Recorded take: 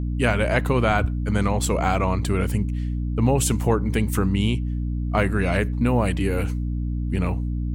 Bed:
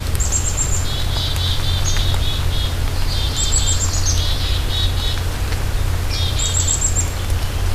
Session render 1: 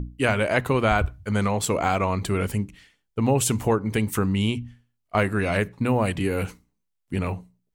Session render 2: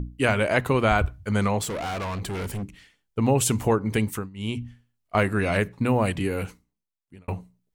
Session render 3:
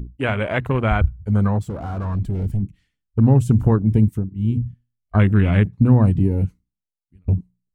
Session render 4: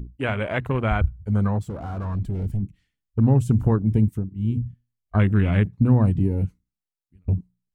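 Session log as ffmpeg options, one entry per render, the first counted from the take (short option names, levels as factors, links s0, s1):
-af "bandreject=f=60:t=h:w=6,bandreject=f=120:t=h:w=6,bandreject=f=180:t=h:w=6,bandreject=f=240:t=h:w=6,bandreject=f=300:t=h:w=6"
-filter_complex "[0:a]asettb=1/sr,asplit=3[s0][s1][s2];[s0]atrim=end=1.634[s3];[s1]atrim=start=1.63:end=2.63,asetpts=PTS-STARTPTS,afade=t=in:d=0.004:c=qsin,afade=t=out:st=0.996:d=0.004:c=qsin,volume=25.1,asoftclip=hard,volume=0.0398[s4];[s2]atrim=start=2.626[s5];[s3][s4]acrossfade=d=0.004:c1=hsin:c2=qsin[s6];[s6][s5]acrossfade=d=0.004:c1=qsin:c2=hsin,asplit=4[s7][s8][s9][s10];[s7]atrim=end=4.3,asetpts=PTS-STARTPTS,afade=t=out:st=4.03:d=0.27:silence=0.0749894[s11];[s8]atrim=start=4.3:end=4.34,asetpts=PTS-STARTPTS,volume=0.075[s12];[s9]atrim=start=4.34:end=7.28,asetpts=PTS-STARTPTS,afade=t=in:d=0.27:silence=0.0749894,afade=t=out:st=1.71:d=1.23[s13];[s10]atrim=start=7.28,asetpts=PTS-STARTPTS,afade=t=in:d=0.004:c=hsin[s14];[s11][s12][s13][s14]concat=n=4:v=0:a=1"
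-af "afwtdn=0.0447,asubboost=boost=5.5:cutoff=240"
-af "volume=0.668"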